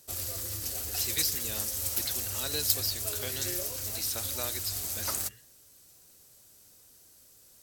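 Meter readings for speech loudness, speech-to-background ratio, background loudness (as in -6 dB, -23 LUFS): -35.5 LUFS, -4.5 dB, -31.0 LUFS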